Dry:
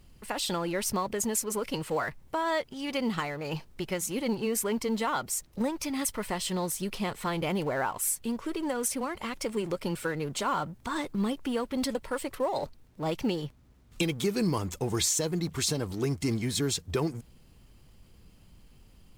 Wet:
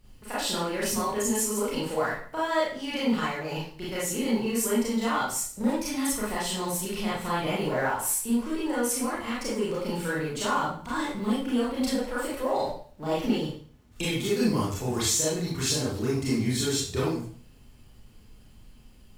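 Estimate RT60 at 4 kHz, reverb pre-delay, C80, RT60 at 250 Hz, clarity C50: 0.45 s, 27 ms, 6.5 dB, 0.50 s, 0.5 dB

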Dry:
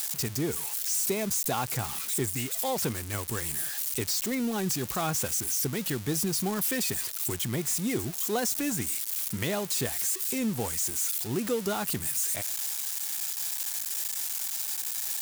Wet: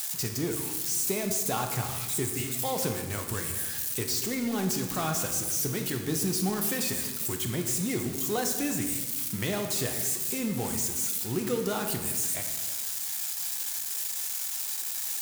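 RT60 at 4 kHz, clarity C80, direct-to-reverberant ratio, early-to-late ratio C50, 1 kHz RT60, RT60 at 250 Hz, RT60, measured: 1.1 s, 8.5 dB, 4.0 dB, 6.5 dB, 1.3 s, 1.8 s, 1.4 s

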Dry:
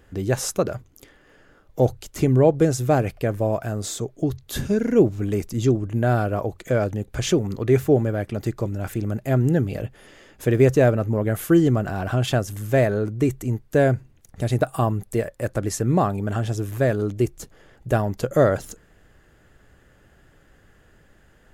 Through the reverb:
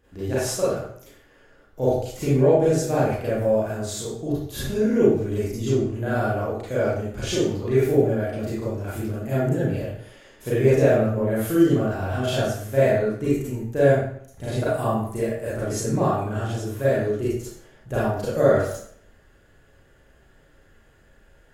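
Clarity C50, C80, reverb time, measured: −2.0 dB, 3.0 dB, 0.60 s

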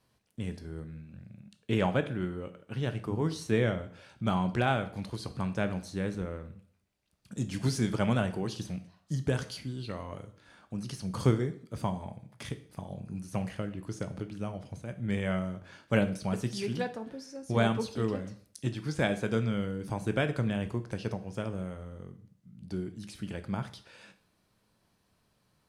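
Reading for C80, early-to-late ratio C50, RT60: 17.5 dB, 14.0 dB, 0.55 s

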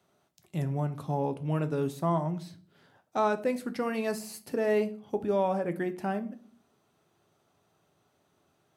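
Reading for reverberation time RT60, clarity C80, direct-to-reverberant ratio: 0.45 s, 22.0 dB, 8.5 dB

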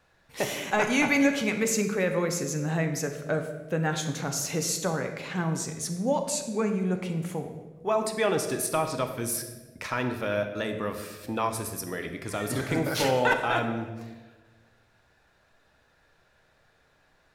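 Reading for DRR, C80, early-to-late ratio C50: 5.0 dB, 9.5 dB, 7.5 dB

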